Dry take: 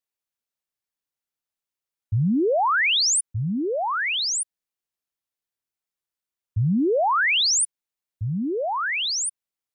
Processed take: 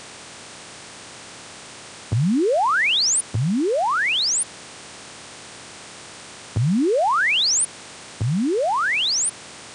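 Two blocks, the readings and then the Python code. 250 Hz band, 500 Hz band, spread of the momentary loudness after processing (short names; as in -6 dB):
+2.5 dB, +2.5 dB, 22 LU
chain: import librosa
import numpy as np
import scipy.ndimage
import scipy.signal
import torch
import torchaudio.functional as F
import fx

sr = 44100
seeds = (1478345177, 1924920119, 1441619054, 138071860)

y = fx.bin_compress(x, sr, power=0.4)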